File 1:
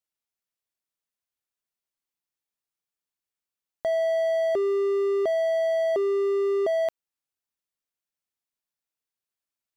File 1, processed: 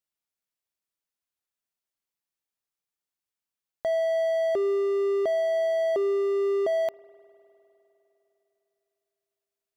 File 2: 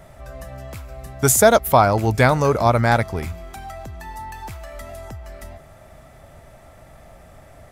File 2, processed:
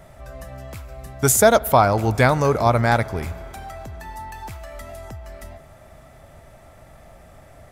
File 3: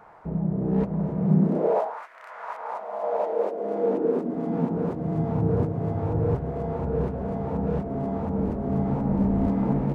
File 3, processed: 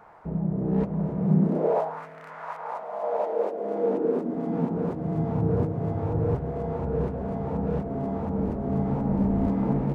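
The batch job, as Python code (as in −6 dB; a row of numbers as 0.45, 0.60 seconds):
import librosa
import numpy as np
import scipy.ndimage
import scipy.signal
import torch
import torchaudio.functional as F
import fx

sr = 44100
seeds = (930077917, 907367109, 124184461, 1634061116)

y = fx.rev_spring(x, sr, rt60_s=3.5, pass_ms=(50,), chirp_ms=35, drr_db=19.0)
y = y * 10.0 ** (-1.0 / 20.0)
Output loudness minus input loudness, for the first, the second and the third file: −1.0, −1.0, −1.0 LU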